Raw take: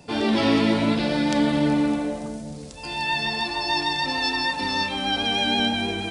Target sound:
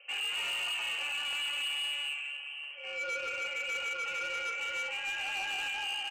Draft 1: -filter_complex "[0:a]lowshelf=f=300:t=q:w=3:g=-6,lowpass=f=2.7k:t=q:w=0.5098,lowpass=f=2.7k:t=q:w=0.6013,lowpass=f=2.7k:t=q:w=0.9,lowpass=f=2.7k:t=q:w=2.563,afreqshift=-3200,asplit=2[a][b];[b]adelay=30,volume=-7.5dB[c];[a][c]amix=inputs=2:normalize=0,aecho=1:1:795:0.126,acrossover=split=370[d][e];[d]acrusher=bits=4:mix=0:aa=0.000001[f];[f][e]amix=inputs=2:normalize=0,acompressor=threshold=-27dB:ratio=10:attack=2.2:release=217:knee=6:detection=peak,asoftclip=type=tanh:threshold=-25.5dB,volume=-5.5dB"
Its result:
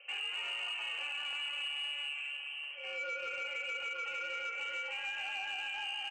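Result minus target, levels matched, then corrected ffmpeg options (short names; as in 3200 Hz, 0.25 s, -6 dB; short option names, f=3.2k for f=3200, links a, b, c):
compressor: peak gain reduction +8.5 dB
-filter_complex "[0:a]lowshelf=f=300:t=q:w=3:g=-6,lowpass=f=2.7k:t=q:w=0.5098,lowpass=f=2.7k:t=q:w=0.6013,lowpass=f=2.7k:t=q:w=0.9,lowpass=f=2.7k:t=q:w=2.563,afreqshift=-3200,asplit=2[a][b];[b]adelay=30,volume=-7.5dB[c];[a][c]amix=inputs=2:normalize=0,aecho=1:1:795:0.126,acrossover=split=370[d][e];[d]acrusher=bits=4:mix=0:aa=0.000001[f];[f][e]amix=inputs=2:normalize=0,acompressor=threshold=-17.5dB:ratio=10:attack=2.2:release=217:knee=6:detection=peak,asoftclip=type=tanh:threshold=-25.5dB,volume=-5.5dB"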